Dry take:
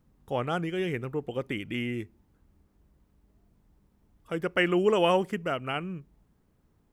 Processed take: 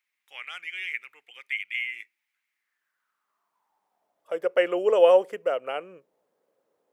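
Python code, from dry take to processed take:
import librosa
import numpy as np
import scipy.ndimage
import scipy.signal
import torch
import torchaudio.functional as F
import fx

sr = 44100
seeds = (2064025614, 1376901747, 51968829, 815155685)

y = fx.filter_sweep_highpass(x, sr, from_hz=2200.0, to_hz=520.0, start_s=2.46, end_s=4.44, q=5.3)
y = y * 10.0 ** (-4.0 / 20.0)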